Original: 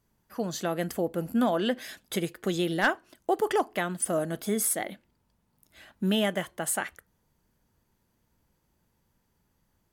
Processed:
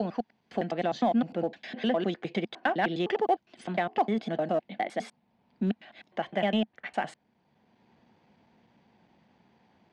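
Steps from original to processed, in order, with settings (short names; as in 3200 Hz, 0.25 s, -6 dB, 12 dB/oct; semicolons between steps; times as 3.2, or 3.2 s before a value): slices in reverse order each 0.102 s, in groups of 5; speaker cabinet 160–4200 Hz, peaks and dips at 220 Hz +6 dB, 740 Hz +9 dB, 1300 Hz -5 dB, 2300 Hz +4 dB; in parallel at -11 dB: overloaded stage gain 22 dB; on the sum: three-band squash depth 40%; gain -4 dB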